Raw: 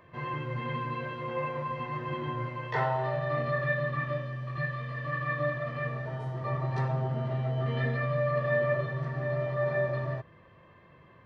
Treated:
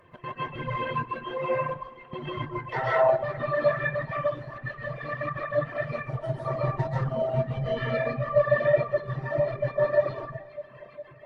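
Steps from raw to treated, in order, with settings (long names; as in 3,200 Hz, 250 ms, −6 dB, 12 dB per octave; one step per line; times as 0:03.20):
dynamic equaliser 200 Hz, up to −5 dB, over −54 dBFS, Q 5.1
gate pattern "xx.x.x.xx" 190 BPM −24 dB
flanger 1.7 Hz, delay 1.5 ms, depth 6.7 ms, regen +44%
0:01.46–0:02.13: fade out
delay that swaps between a low-pass and a high-pass 204 ms, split 1,200 Hz, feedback 78%, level −9.5 dB
convolution reverb RT60 0.65 s, pre-delay 100 ms, DRR −5.5 dB
reverb reduction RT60 2 s
0:05.88–0:07.79: bass and treble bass +3 dB, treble +6 dB
level +5 dB
Opus 32 kbit/s 48,000 Hz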